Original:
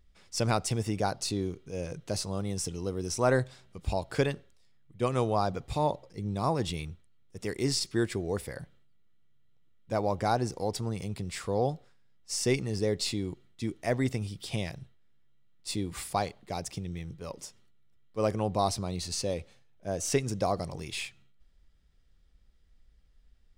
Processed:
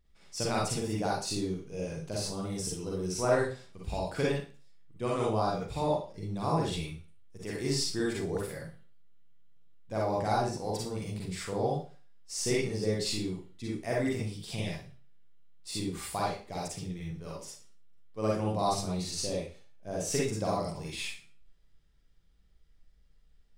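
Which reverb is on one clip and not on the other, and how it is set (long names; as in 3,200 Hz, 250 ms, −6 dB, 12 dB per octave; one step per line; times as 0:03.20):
four-comb reverb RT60 0.37 s, DRR −4.5 dB
level −6.5 dB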